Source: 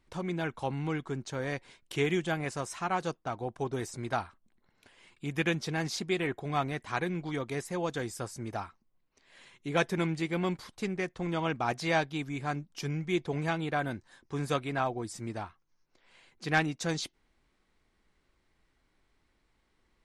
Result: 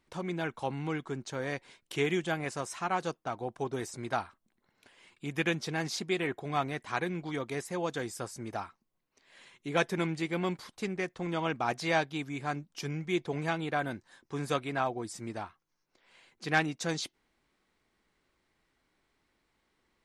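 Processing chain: low shelf 84 Hz -12 dB

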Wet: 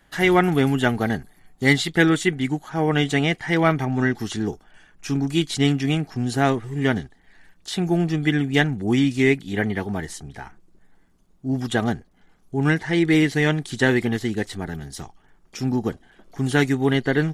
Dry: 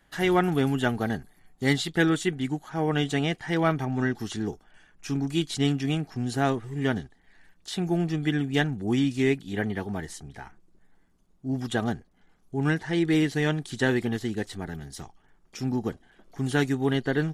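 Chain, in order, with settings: dynamic EQ 2100 Hz, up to +6 dB, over -49 dBFS, Q 5.1; gain +5 dB

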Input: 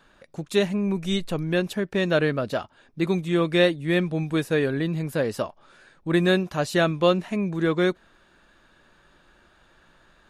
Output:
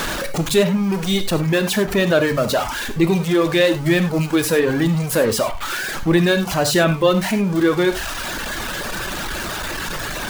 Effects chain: zero-crossing step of -24 dBFS; in parallel at +0.5 dB: limiter -17 dBFS, peak gain reduction 10.5 dB; on the sum: reverb removal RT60 1.3 s; non-linear reverb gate 0.12 s flat, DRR 8 dB

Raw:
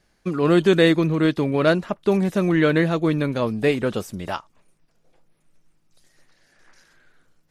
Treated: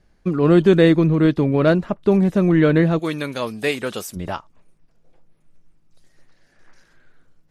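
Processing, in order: tilt -2 dB/oct, from 2.98 s +2.5 dB/oct, from 4.15 s -1.5 dB/oct

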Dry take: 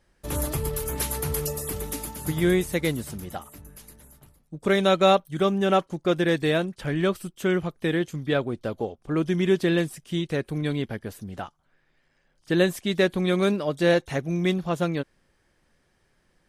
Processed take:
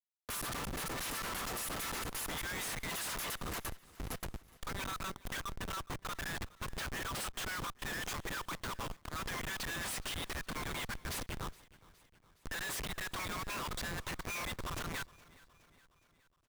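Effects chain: Chebyshev high-pass 970 Hz, order 8; auto swell 0.34 s; negative-ratio compressor -45 dBFS, ratio -0.5; Schmitt trigger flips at -50.5 dBFS; on a send: feedback echo 0.416 s, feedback 57%, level -22 dB; on the sum: gain +10 dB

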